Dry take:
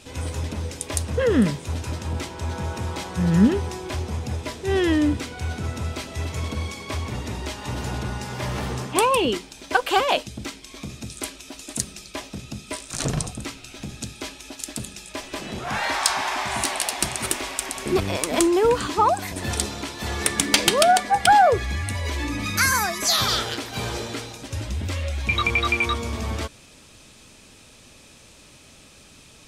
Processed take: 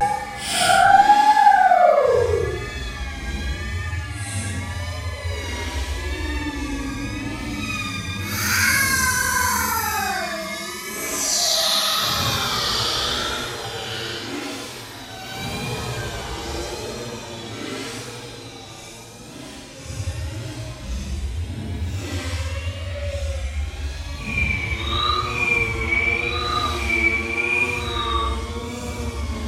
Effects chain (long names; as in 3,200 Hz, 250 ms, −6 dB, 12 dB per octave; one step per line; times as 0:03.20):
extreme stretch with random phases 5.9×, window 0.10 s, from 0:21.15
pitch vibrato 0.84 Hz 58 cents